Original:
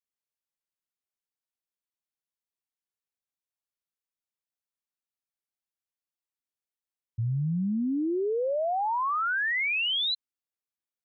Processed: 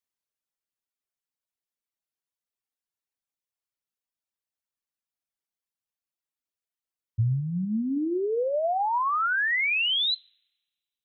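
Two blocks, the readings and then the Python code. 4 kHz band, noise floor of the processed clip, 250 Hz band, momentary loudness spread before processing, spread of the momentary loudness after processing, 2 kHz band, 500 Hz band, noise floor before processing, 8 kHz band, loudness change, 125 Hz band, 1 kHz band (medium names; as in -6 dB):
+2.5 dB, under -85 dBFS, +0.5 dB, 6 LU, 7 LU, +2.5 dB, +1.5 dB, under -85 dBFS, no reading, +2.0 dB, +2.0 dB, +2.5 dB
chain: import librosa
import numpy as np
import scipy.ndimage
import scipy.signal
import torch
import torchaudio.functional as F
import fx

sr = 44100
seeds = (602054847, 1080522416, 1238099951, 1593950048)

y = fx.rev_double_slope(x, sr, seeds[0], early_s=0.66, late_s=1.8, knee_db=-21, drr_db=14.0)
y = fx.dereverb_blind(y, sr, rt60_s=1.9)
y = fx.dynamic_eq(y, sr, hz=100.0, q=3.1, threshold_db=-45.0, ratio=4.0, max_db=5)
y = F.gain(torch.from_numpy(y), 2.5).numpy()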